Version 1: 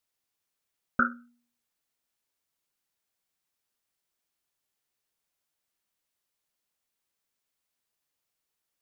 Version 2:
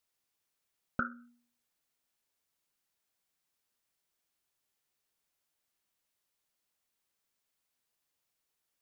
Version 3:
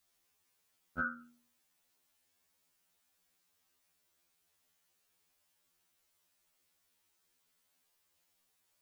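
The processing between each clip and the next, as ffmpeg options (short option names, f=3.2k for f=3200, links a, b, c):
-af "acompressor=threshold=-32dB:ratio=4"
-af "alimiter=level_in=6.5dB:limit=-24dB:level=0:latency=1:release=11,volume=-6.5dB,afftfilt=real='re*2*eq(mod(b,4),0)':imag='im*2*eq(mod(b,4),0)':win_size=2048:overlap=0.75,volume=8.5dB"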